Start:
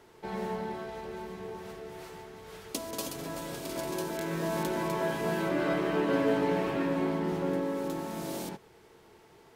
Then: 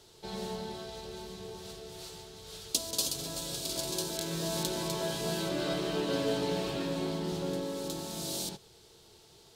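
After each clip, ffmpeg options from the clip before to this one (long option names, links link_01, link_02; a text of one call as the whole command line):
ffmpeg -i in.wav -af "equalizer=frequency=250:width_type=o:width=1:gain=-8,equalizer=frequency=500:width_type=o:width=1:gain=-3,equalizer=frequency=1000:width_type=o:width=1:gain=-7,equalizer=frequency=2000:width_type=o:width=1:gain=-11,equalizer=frequency=4000:width_type=o:width=1:gain=10,equalizer=frequency=8000:width_type=o:width=1:gain=5,volume=2.5dB" out.wav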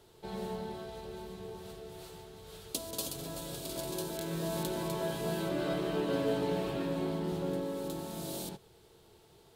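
ffmpeg -i in.wav -af "equalizer=frequency=5500:width_type=o:width=1.6:gain=-11" out.wav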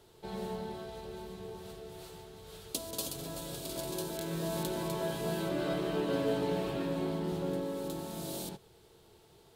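ffmpeg -i in.wav -af anull out.wav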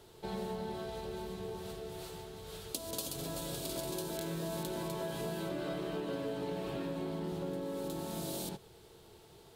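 ffmpeg -i in.wav -af "acompressor=threshold=-38dB:ratio=6,volume=3dB" out.wav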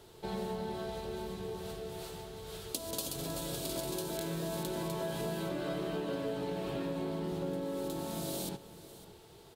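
ffmpeg -i in.wav -af "aecho=1:1:554:0.15,volume=1.5dB" out.wav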